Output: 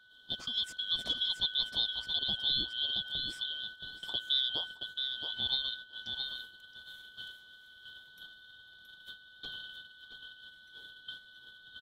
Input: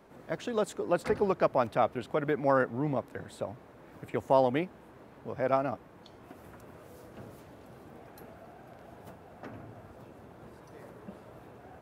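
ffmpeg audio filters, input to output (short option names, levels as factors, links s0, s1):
-af "afftfilt=real='real(if(lt(b,272),68*(eq(floor(b/68),0)*1+eq(floor(b/68),1)*3+eq(floor(b/68),2)*0+eq(floor(b/68),3)*2)+mod(b,68),b),0)':imag='imag(if(lt(b,272),68*(eq(floor(b/68),0)*1+eq(floor(b/68),1)*3+eq(floor(b/68),2)*0+eq(floor(b/68),3)*2)+mod(b,68),b),0)':win_size=2048:overlap=0.75,adynamicequalizer=threshold=0.00501:dfrequency=1400:dqfactor=1.5:tfrequency=1400:tqfactor=1.5:attack=5:release=100:ratio=0.375:range=3:mode=cutabove:tftype=bell,acompressor=threshold=0.0112:ratio=1.5,aeval=exprs='val(0)+0.00316*sin(2*PI*1500*n/s)':c=same,aecho=1:1:672|1344|2016:0.501|0.11|0.0243,agate=range=0.316:threshold=0.00631:ratio=16:detection=peak"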